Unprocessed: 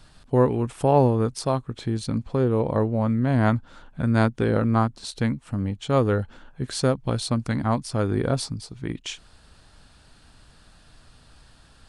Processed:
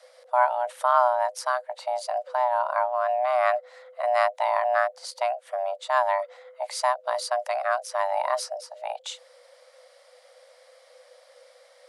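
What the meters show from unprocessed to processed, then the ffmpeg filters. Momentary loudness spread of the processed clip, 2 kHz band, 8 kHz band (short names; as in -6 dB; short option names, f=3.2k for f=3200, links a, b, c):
12 LU, +4.0 dB, -1.5 dB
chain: -af "afreqshift=490,volume=-2.5dB"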